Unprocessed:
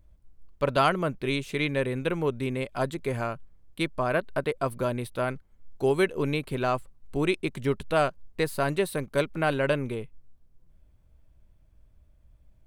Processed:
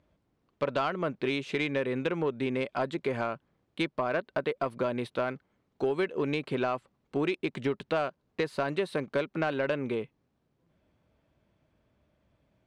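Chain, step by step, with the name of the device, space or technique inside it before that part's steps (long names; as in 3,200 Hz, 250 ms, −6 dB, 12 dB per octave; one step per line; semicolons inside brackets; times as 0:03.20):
AM radio (band-pass filter 190–4,300 Hz; downward compressor 5 to 1, threshold −29 dBFS, peak gain reduction 11 dB; soft clipping −21 dBFS, distortion −22 dB)
level +4 dB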